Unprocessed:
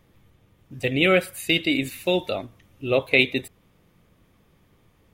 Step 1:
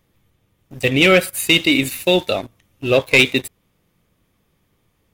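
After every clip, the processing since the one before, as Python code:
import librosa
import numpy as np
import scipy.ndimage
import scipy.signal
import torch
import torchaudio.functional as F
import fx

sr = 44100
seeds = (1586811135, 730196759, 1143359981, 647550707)

y = fx.high_shelf(x, sr, hz=3600.0, db=6.5)
y = fx.leveller(y, sr, passes=2)
y = y * 10.0 ** (-1.0 / 20.0)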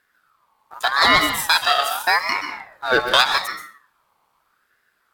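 y = fx.rev_plate(x, sr, seeds[0], rt60_s=0.58, hf_ratio=0.6, predelay_ms=115, drr_db=6.0)
y = fx.ring_lfo(y, sr, carrier_hz=1300.0, swing_pct=25, hz=0.83)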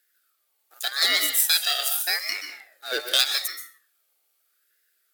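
y = scipy.signal.sosfilt(scipy.signal.butter(2, 76.0, 'highpass', fs=sr, output='sos'), x)
y = fx.riaa(y, sr, side='recording')
y = fx.fixed_phaser(y, sr, hz=410.0, stages=4)
y = y * 10.0 ** (-7.5 / 20.0)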